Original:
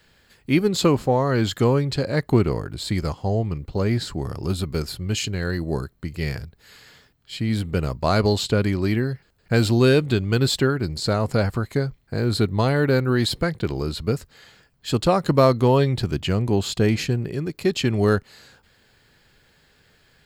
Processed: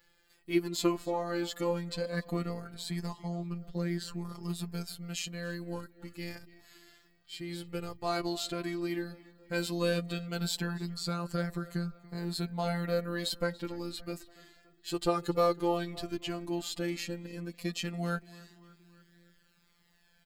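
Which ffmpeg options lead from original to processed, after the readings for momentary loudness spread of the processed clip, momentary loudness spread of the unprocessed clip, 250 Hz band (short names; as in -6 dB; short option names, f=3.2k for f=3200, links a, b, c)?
11 LU, 10 LU, -12.0 dB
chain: -filter_complex "[0:a]afftfilt=real='hypot(re,im)*cos(PI*b)':imag='0':win_size=1024:overlap=0.75,highshelf=f=9.1k:g=7.5,asplit=2[a][b];[b]adelay=286,lowpass=f=4k:p=1,volume=-19dB,asplit=2[c][d];[d]adelay=286,lowpass=f=4k:p=1,volume=0.54,asplit=2[e][f];[f]adelay=286,lowpass=f=4k:p=1,volume=0.54,asplit=2[g][h];[h]adelay=286,lowpass=f=4k:p=1,volume=0.54[i];[a][c][e][g][i]amix=inputs=5:normalize=0,flanger=delay=2.3:depth=3:regen=13:speed=0.13:shape=triangular,volume=-4.5dB"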